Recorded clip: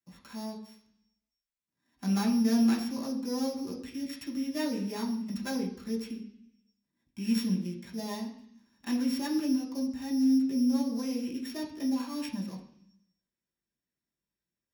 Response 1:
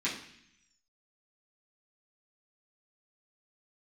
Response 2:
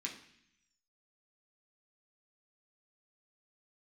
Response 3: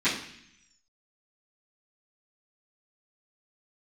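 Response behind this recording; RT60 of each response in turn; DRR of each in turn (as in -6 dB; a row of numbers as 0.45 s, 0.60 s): 2; 0.65 s, 0.65 s, 0.65 s; -10.0 dB, -2.5 dB, -17.0 dB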